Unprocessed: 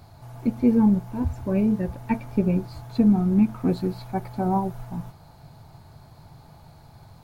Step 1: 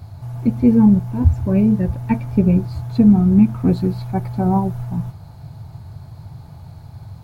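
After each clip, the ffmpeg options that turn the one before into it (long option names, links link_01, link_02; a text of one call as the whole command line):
ffmpeg -i in.wav -af "equalizer=frequency=95:width=0.87:gain=13,volume=2.5dB" out.wav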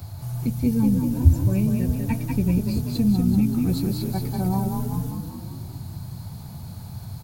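ffmpeg -i in.wav -filter_complex "[0:a]crystalizer=i=2.5:c=0,asplit=7[link_01][link_02][link_03][link_04][link_05][link_06][link_07];[link_02]adelay=192,afreqshift=32,volume=-5dB[link_08];[link_03]adelay=384,afreqshift=64,volume=-11.6dB[link_09];[link_04]adelay=576,afreqshift=96,volume=-18.1dB[link_10];[link_05]adelay=768,afreqshift=128,volume=-24.7dB[link_11];[link_06]adelay=960,afreqshift=160,volume=-31.2dB[link_12];[link_07]adelay=1152,afreqshift=192,volume=-37.8dB[link_13];[link_01][link_08][link_09][link_10][link_11][link_12][link_13]amix=inputs=7:normalize=0,acrossover=split=130|3000[link_14][link_15][link_16];[link_15]acompressor=threshold=-44dB:ratio=1.5[link_17];[link_14][link_17][link_16]amix=inputs=3:normalize=0" out.wav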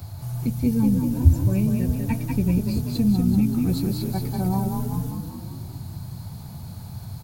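ffmpeg -i in.wav -af anull out.wav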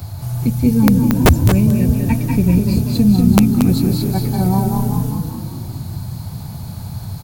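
ffmpeg -i in.wav -filter_complex "[0:a]aeval=exprs='(mod(3.16*val(0)+1,2)-1)/3.16':channel_layout=same,asplit=2[link_01][link_02];[link_02]aecho=0:1:229:0.376[link_03];[link_01][link_03]amix=inputs=2:normalize=0,volume=7.5dB" out.wav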